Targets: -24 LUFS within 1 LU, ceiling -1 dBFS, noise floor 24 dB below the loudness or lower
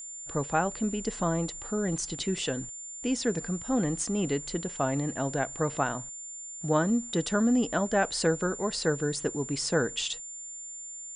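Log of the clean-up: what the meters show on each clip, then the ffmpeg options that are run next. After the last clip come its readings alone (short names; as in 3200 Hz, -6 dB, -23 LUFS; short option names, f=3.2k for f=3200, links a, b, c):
steady tone 7200 Hz; tone level -39 dBFS; loudness -29.5 LUFS; peak -12.0 dBFS; loudness target -24.0 LUFS
-> -af "bandreject=f=7.2k:w=30"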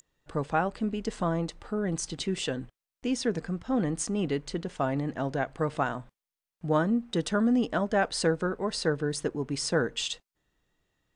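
steady tone none; loudness -29.5 LUFS; peak -12.5 dBFS; loudness target -24.0 LUFS
-> -af "volume=5.5dB"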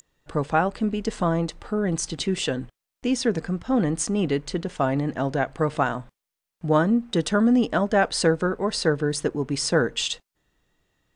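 loudness -24.0 LUFS; peak -7.0 dBFS; noise floor -85 dBFS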